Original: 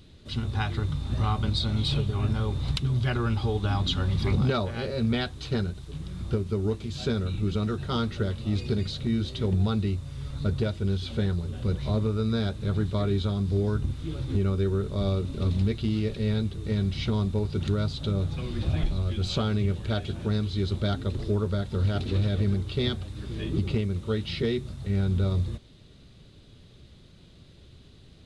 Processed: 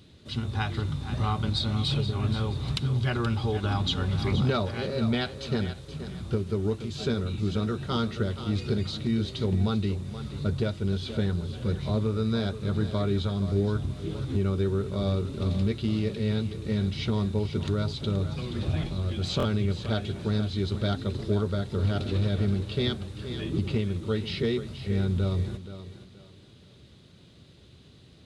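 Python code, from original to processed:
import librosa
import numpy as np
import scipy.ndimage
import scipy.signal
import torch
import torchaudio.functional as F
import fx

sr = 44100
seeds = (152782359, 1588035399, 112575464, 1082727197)

y = scipy.signal.sosfilt(scipy.signal.butter(2, 79.0, 'highpass', fs=sr, output='sos'), x)
y = fx.echo_thinned(y, sr, ms=476, feedback_pct=32, hz=160.0, wet_db=-11.0)
y = fx.buffer_glitch(y, sr, at_s=(19.38,), block=1024, repeats=2)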